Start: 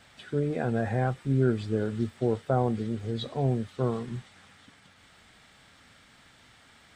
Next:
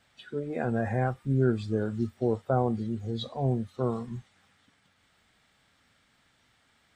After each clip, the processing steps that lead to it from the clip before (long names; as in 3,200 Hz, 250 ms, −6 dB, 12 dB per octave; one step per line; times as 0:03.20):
noise reduction from a noise print of the clip's start 10 dB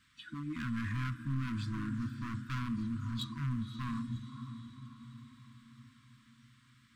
feedback delay with all-pass diffusion 547 ms, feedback 53%, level −12.5 dB
hard clipping −30 dBFS, distortion −5 dB
brick-wall band-stop 330–960 Hz
level −1.5 dB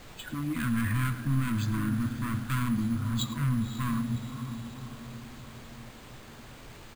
background noise pink −55 dBFS
single-tap delay 104 ms −15.5 dB
bad sample-rate conversion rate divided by 4×, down filtered, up hold
level +7.5 dB